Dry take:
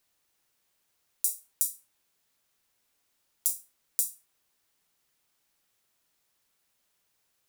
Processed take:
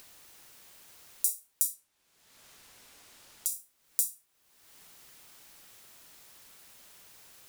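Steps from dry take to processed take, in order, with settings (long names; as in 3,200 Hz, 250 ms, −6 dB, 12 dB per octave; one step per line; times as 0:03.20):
0:01.74–0:03.52: high-shelf EQ 12,000 Hz −9.5 dB
upward compression, threshold −38 dBFS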